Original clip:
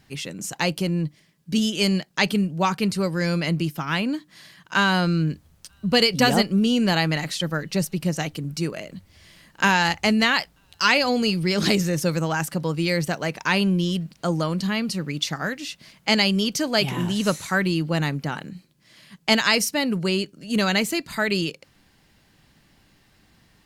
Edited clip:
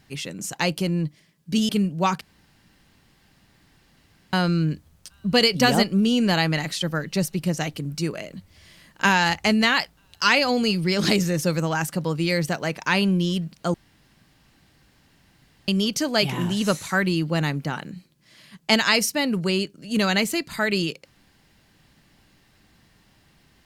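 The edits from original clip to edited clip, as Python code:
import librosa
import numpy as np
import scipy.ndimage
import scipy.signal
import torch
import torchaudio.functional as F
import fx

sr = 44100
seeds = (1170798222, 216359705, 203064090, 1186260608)

y = fx.edit(x, sr, fx.cut(start_s=1.69, length_s=0.59),
    fx.room_tone_fill(start_s=2.8, length_s=2.12),
    fx.room_tone_fill(start_s=14.33, length_s=1.94), tone=tone)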